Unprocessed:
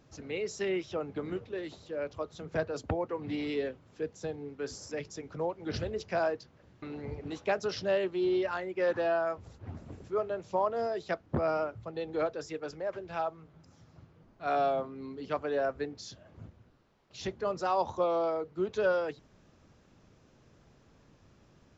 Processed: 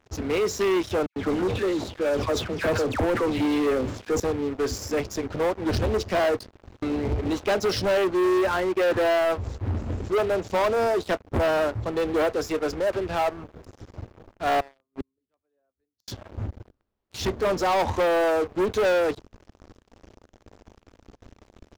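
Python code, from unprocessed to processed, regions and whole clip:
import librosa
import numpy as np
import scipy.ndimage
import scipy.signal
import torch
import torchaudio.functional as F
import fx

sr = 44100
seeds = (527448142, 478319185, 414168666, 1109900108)

y = fx.chain(x, sr, fx.highpass(hz=110.0, slope=6),
    fx.dispersion(late='lows', ms=104.0, hz=1900.0),
    fx.sustainer(db_per_s=91.0), at=(1.06, 4.2))
y = fx.chain(y, sr, fx.gate_flip(shuts_db=-36.0, range_db=-28),
    fx.band_widen(depth_pct=40), at=(14.6, 16.08))
y = fx.low_shelf(y, sr, hz=310.0, db=12.0)
y = fx.leveller(y, sr, passes=5)
y = fx.peak_eq(y, sr, hz=150.0, db=-13.0, octaves=0.58)
y = y * librosa.db_to_amplitude(-7.0)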